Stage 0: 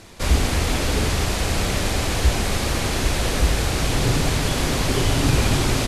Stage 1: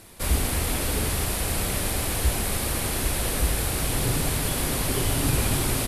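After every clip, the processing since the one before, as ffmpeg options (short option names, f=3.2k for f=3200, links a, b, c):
-af "aexciter=amount=5.8:drive=2.6:freq=8.8k,volume=-5.5dB"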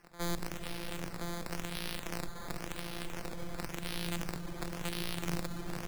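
-filter_complex "[0:a]afftfilt=real='hypot(re,im)*cos(PI*b)':imag='0':win_size=1024:overlap=0.75,acrusher=samples=11:mix=1:aa=0.000001:lfo=1:lforange=11:lforate=0.94,acrossover=split=380|3000[a][b][c];[b]acompressor=threshold=-36dB:ratio=2[d];[a][d][c]amix=inputs=3:normalize=0,volume=-8dB"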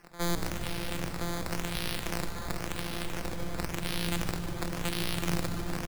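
-filter_complex "[0:a]asplit=7[a][b][c][d][e][f][g];[b]adelay=149,afreqshift=-65,volume=-11dB[h];[c]adelay=298,afreqshift=-130,volume=-16dB[i];[d]adelay=447,afreqshift=-195,volume=-21.1dB[j];[e]adelay=596,afreqshift=-260,volume=-26.1dB[k];[f]adelay=745,afreqshift=-325,volume=-31.1dB[l];[g]adelay=894,afreqshift=-390,volume=-36.2dB[m];[a][h][i][j][k][l][m]amix=inputs=7:normalize=0,volume=5dB"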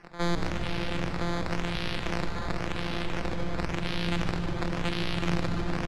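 -filter_complex "[0:a]lowpass=4.1k,asplit=2[a][b];[b]alimiter=level_in=2.5dB:limit=-24dB:level=0:latency=1,volume=-2.5dB,volume=-1.5dB[c];[a][c]amix=inputs=2:normalize=0"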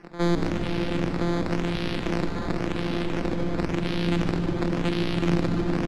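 -af "equalizer=f=280:w=0.9:g=10.5"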